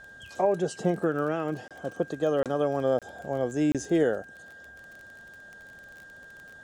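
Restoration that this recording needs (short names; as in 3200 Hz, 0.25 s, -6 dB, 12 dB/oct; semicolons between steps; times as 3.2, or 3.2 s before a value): de-click; notch 1600 Hz, Q 30; interpolate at 1.68/2.43/2.99/3.72, 27 ms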